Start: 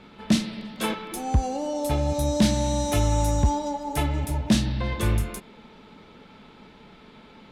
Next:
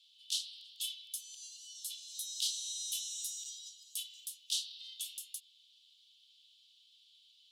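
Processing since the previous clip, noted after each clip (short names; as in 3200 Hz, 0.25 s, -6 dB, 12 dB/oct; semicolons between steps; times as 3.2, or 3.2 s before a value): Chebyshev high-pass 3000 Hz, order 6; gain -3 dB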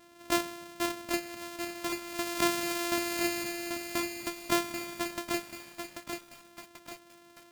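sample sorter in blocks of 128 samples; lo-fi delay 0.787 s, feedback 55%, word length 9-bit, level -5.5 dB; gain +8 dB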